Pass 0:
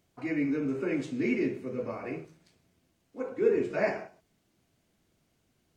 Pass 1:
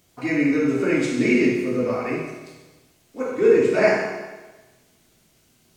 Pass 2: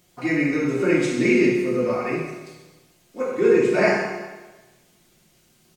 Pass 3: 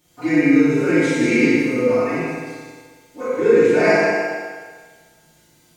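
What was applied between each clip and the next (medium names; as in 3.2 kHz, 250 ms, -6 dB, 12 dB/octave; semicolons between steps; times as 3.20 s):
treble shelf 3.2 kHz +8.5 dB; reverberation RT60 1.2 s, pre-delay 8 ms, DRR -1.5 dB; trim +6.5 dB
comb 5.6 ms, depth 45%
FDN reverb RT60 1.5 s, low-frequency decay 0.8×, high-frequency decay 0.9×, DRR -8.5 dB; trim -5 dB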